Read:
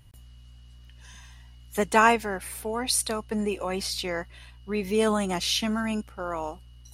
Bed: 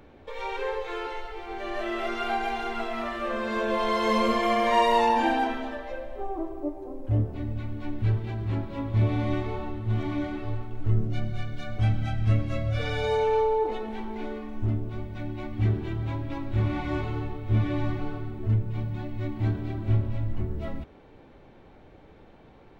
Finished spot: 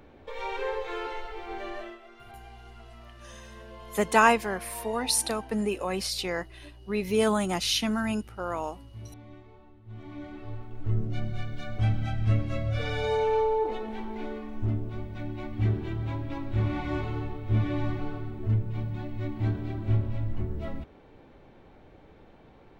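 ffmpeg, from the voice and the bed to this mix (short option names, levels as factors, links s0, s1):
-filter_complex "[0:a]adelay=2200,volume=0.944[s0];[1:a]volume=8.41,afade=t=out:st=1.55:d=0.44:silence=0.1,afade=t=in:st=9.83:d=1.47:silence=0.105925[s1];[s0][s1]amix=inputs=2:normalize=0"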